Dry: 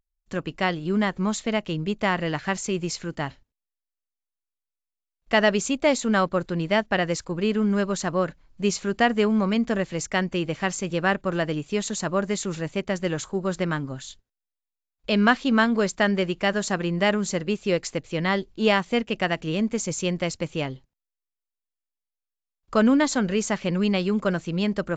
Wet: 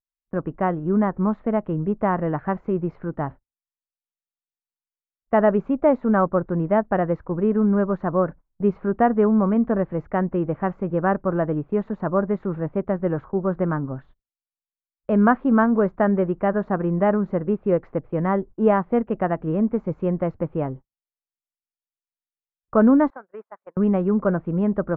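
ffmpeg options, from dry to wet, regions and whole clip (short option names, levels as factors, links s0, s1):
-filter_complex "[0:a]asettb=1/sr,asplit=3[s0][s1][s2];[s0]atrim=end=23.104[s3];[s1]atrim=start=23.1:end=23.77,asetpts=PTS-STARTPTS,afade=t=in:d=0.004:c=qsin,afade=t=out:st=0.666:d=0.004:c=qsin,highpass=770,lowpass=2100,acompressor=threshold=0.0251:ratio=12:attack=3.2:release=140:knee=1:detection=peak,agate=range=0.2:threshold=0.01:ratio=16:release=100:detection=peak[s4];[s2]atrim=start=23.766[s5];[s3][s4]acrossfade=d=0.004:c1=hsin:c2=qsin[s6];[s6][s5]acrossfade=d=0.004:c1=qsin:c2=hsin,agate=range=0.0562:threshold=0.0112:ratio=16:detection=peak,lowpass=f=1300:w=0.5412,lowpass=f=1300:w=1.3066,volume=1.5"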